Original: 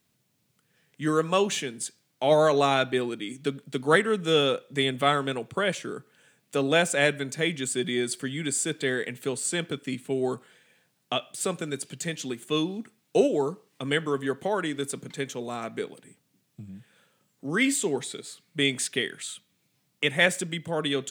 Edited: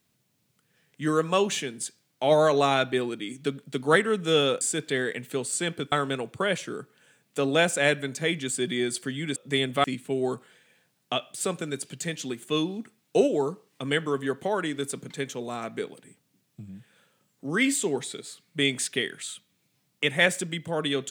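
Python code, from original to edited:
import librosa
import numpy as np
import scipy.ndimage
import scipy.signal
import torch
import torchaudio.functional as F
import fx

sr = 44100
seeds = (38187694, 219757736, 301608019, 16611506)

y = fx.edit(x, sr, fx.swap(start_s=4.61, length_s=0.48, other_s=8.53, other_length_s=1.31), tone=tone)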